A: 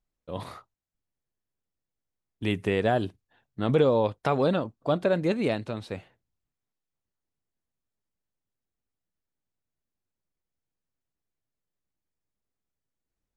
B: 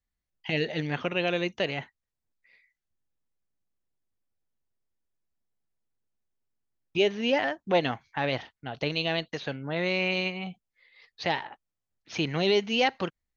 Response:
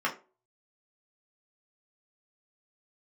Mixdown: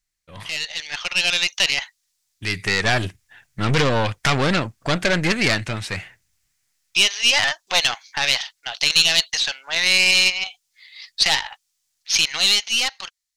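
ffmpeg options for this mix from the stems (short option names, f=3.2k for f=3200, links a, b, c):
-filter_complex "[0:a]equalizer=f=250:t=o:w=1:g=-7,equalizer=f=500:t=o:w=1:g=-8,equalizer=f=1k:t=o:w=1:g=-4,equalizer=f=2k:t=o:w=1:g=9,equalizer=f=4k:t=o:w=1:g=-12,volume=3dB[a];[1:a]highpass=f=740:w=0.5412,highpass=f=740:w=1.3066,highshelf=f=3.9k:g=12,volume=-4dB,asplit=2[b][c];[c]apad=whole_len=589214[d];[a][d]sidechaincompress=threshold=-45dB:ratio=8:attack=22:release=1160[e];[e][b]amix=inputs=2:normalize=0,aeval=exprs='(tanh(25.1*val(0)+0.6)-tanh(0.6))/25.1':c=same,equalizer=f=5.4k:t=o:w=2.3:g=13.5,dynaudnorm=f=240:g=9:m=12.5dB"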